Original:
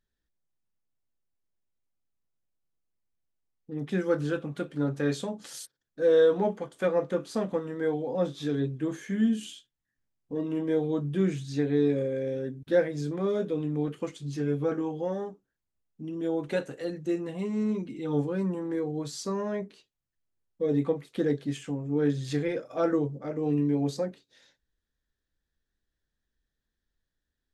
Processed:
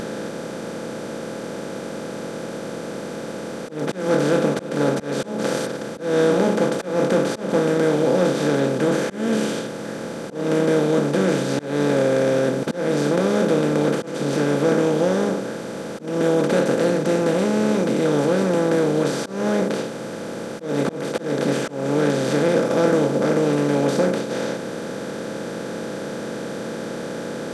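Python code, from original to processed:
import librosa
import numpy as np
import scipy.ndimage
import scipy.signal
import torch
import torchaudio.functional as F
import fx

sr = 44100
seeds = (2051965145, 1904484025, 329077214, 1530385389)

y = fx.bin_compress(x, sr, power=0.2)
y = fx.auto_swell(y, sr, attack_ms=218.0)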